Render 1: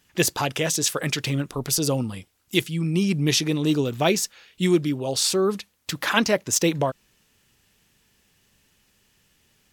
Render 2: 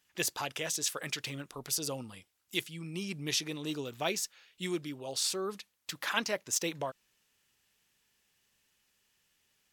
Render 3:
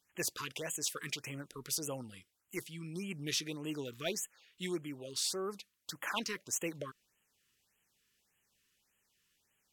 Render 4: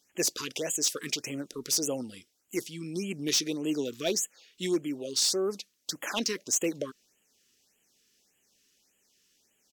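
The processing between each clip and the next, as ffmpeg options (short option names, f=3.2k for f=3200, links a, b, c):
-af "lowshelf=f=420:g=-10.5,volume=-9dB"
-af "asoftclip=type=tanh:threshold=-20dB,afftfilt=real='re*(1-between(b*sr/1024,640*pow(4800/640,0.5+0.5*sin(2*PI*1.7*pts/sr))/1.41,640*pow(4800/640,0.5+0.5*sin(2*PI*1.7*pts/sr))*1.41))':imag='im*(1-between(b*sr/1024,640*pow(4800/640,0.5+0.5*sin(2*PI*1.7*pts/sr))/1.41,640*pow(4800/640,0.5+0.5*sin(2*PI*1.7*pts/sr))*1.41))':win_size=1024:overlap=0.75,volume=-2.5dB"
-af "firequalizer=gain_entry='entry(130,0);entry(250,11);entry(660,8);entry(1000,0);entry(5700,13);entry(9200,5)':delay=0.05:min_phase=1,volume=20.5dB,asoftclip=hard,volume=-20.5dB"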